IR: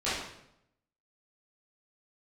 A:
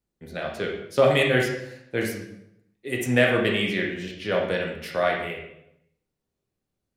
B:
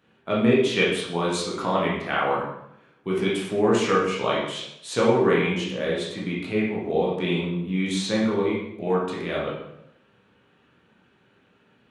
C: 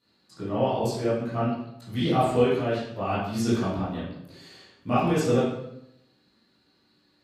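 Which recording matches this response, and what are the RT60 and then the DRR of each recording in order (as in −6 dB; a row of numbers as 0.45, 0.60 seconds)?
C; 0.80, 0.80, 0.80 seconds; −1.0, −6.0, −13.0 decibels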